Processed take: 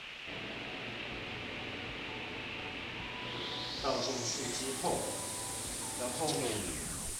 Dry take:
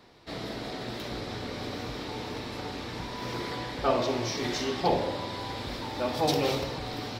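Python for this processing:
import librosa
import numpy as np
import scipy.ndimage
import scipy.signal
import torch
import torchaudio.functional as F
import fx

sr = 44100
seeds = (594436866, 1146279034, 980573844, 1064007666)

y = fx.tape_stop_end(x, sr, length_s=0.81)
y = fx.quant_dither(y, sr, seeds[0], bits=6, dither='triangular')
y = fx.filter_sweep_lowpass(y, sr, from_hz=2700.0, to_hz=9100.0, start_s=3.16, end_s=4.69, q=4.1)
y = y * librosa.db_to_amplitude(-9.0)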